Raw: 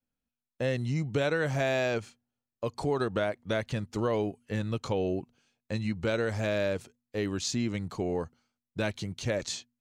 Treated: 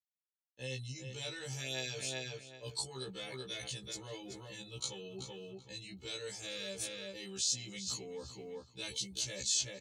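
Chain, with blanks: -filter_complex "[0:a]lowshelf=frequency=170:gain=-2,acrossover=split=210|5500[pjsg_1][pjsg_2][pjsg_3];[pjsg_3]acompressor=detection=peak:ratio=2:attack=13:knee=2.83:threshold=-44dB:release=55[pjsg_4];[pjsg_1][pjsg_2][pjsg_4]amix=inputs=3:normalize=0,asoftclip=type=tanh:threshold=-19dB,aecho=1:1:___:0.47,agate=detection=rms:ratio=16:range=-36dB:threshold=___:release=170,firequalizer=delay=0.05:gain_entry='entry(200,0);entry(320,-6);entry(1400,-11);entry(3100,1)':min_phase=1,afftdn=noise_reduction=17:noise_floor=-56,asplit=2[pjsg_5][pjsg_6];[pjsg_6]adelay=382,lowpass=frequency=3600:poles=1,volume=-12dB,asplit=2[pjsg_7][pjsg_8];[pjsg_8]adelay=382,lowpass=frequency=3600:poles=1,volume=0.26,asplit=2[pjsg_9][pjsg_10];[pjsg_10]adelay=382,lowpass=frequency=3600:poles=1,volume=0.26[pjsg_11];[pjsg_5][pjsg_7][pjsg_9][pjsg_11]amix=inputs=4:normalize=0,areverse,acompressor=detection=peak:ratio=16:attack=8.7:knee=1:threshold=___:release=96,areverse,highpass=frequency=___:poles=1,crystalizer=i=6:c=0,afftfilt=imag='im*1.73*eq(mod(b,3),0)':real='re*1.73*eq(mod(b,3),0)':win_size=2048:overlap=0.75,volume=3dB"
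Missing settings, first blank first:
2.3, -60dB, -44dB, 68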